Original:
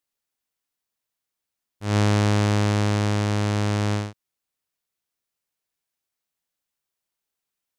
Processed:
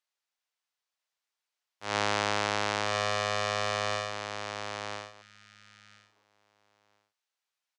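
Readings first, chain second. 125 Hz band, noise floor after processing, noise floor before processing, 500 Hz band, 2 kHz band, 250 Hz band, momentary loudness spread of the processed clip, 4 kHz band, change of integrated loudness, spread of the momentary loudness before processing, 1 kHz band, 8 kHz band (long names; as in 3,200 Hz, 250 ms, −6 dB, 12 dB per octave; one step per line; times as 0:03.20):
−20.5 dB, below −85 dBFS, −85 dBFS, −4.0 dB, +0.5 dB, −17.0 dB, 11 LU, +0.5 dB, −8.0 dB, 8 LU, 0.0 dB, −3.0 dB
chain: three-way crossover with the lows and the highs turned down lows −19 dB, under 540 Hz, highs −15 dB, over 7,100 Hz
repeating echo 1,000 ms, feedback 15%, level −5.5 dB
healed spectral selection 0:05.24–0:06.22, 220–1,200 Hz after
high-pass filter 110 Hz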